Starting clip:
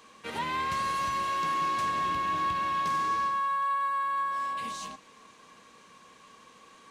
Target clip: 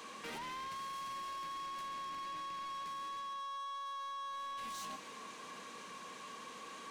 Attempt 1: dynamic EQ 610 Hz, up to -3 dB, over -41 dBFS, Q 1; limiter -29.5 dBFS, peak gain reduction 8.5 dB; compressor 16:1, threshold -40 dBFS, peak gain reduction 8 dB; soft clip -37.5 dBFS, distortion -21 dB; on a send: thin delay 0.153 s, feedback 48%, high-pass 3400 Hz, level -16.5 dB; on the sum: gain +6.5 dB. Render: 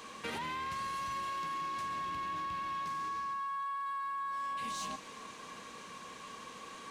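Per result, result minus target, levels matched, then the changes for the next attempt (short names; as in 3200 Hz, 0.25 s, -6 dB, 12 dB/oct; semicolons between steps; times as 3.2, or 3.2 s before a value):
soft clip: distortion -12 dB; 125 Hz band +4.5 dB
change: soft clip -48 dBFS, distortion -9 dB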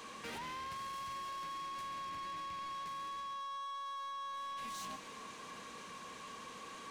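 125 Hz band +4.0 dB
add after compressor: HPF 170 Hz 12 dB/oct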